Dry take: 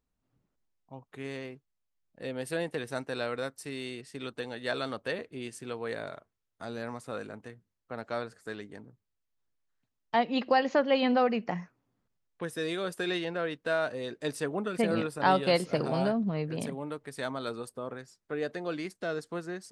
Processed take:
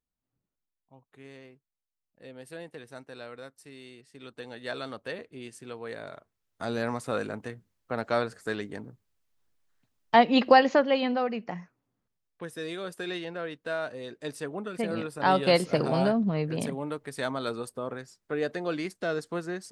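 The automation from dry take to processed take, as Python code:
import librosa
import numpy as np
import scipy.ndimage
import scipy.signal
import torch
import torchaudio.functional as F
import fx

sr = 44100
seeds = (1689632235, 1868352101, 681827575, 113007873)

y = fx.gain(x, sr, db=fx.line((4.09, -9.5), (4.52, -3.0), (6.0, -3.0), (6.7, 7.5), (10.53, 7.5), (11.15, -3.0), (14.99, -3.0), (15.49, 3.5)))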